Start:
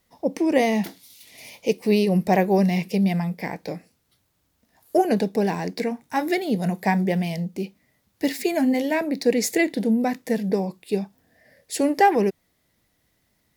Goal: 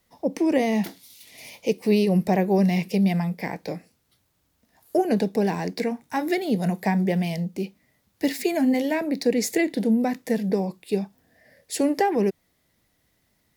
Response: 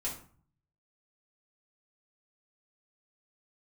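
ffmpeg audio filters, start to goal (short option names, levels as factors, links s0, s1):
-filter_complex "[0:a]acrossover=split=410[s0][s1];[s1]acompressor=threshold=0.0562:ratio=2.5[s2];[s0][s2]amix=inputs=2:normalize=0"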